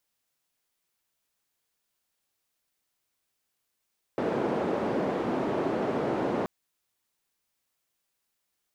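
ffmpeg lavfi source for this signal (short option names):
-f lavfi -i "anoisesrc=c=white:d=2.28:r=44100:seed=1,highpass=f=230,lowpass=f=470,volume=-4.8dB"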